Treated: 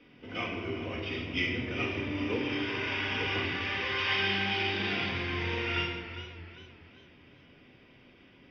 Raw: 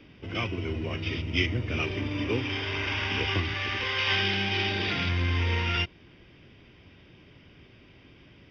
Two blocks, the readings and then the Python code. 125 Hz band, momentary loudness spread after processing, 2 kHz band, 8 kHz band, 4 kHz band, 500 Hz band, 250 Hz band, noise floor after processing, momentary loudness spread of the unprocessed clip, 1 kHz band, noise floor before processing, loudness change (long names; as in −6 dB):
−8.5 dB, 12 LU, −2.0 dB, can't be measured, −3.5 dB, −1.5 dB, −2.0 dB, −58 dBFS, 7 LU, −1.5 dB, −55 dBFS, −3.0 dB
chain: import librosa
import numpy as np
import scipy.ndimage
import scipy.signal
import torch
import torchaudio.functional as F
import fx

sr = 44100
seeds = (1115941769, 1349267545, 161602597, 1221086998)

y = fx.lowpass(x, sr, hz=3700.0, slope=6)
y = fx.low_shelf(y, sr, hz=180.0, db=-11.5)
y = fx.room_shoebox(y, sr, seeds[0], volume_m3=1000.0, walls='mixed', distance_m=1.9)
y = fx.echo_warbled(y, sr, ms=399, feedback_pct=39, rate_hz=2.8, cents=79, wet_db=-13)
y = F.gain(torch.from_numpy(y), -4.5).numpy()